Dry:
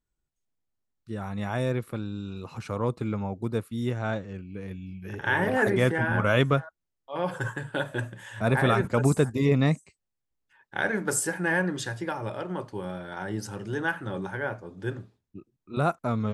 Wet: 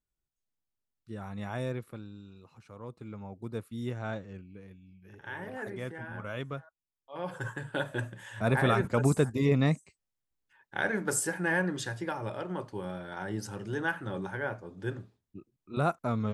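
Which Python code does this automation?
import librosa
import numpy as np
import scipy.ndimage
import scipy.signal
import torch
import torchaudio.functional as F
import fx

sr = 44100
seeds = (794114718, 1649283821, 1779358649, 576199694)

y = fx.gain(x, sr, db=fx.line((1.66, -6.5), (2.64, -18.5), (3.71, -6.5), (4.37, -6.5), (4.8, -15.5), (6.48, -15.5), (7.72, -3.0)))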